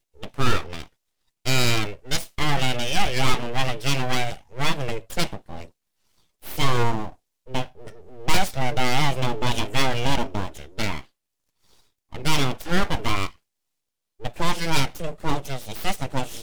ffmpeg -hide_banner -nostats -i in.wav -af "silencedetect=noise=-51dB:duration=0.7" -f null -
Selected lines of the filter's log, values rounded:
silence_start: 13.36
silence_end: 14.20 | silence_duration: 0.84